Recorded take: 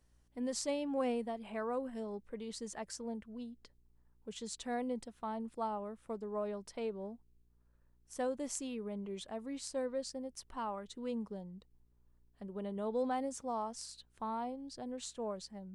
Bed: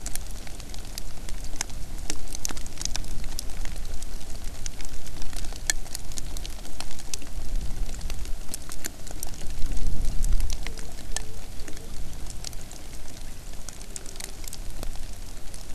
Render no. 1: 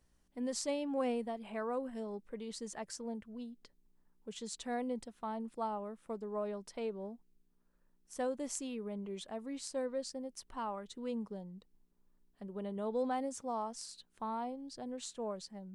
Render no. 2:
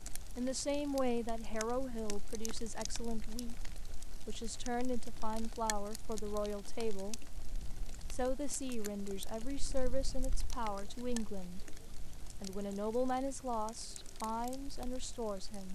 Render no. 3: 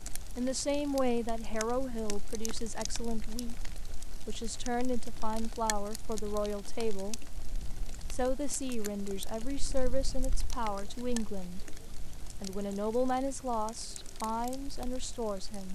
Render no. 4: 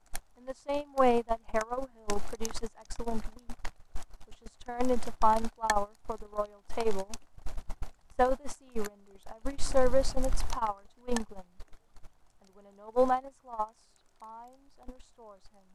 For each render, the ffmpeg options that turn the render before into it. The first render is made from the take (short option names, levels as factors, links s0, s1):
-af "bandreject=f=60:t=h:w=4,bandreject=f=120:t=h:w=4"
-filter_complex "[1:a]volume=0.237[s0];[0:a][s0]amix=inputs=2:normalize=0"
-af "volume=1.68"
-af "agate=range=0.0562:threshold=0.0447:ratio=16:detection=peak,equalizer=f=1000:t=o:w=1.9:g=14"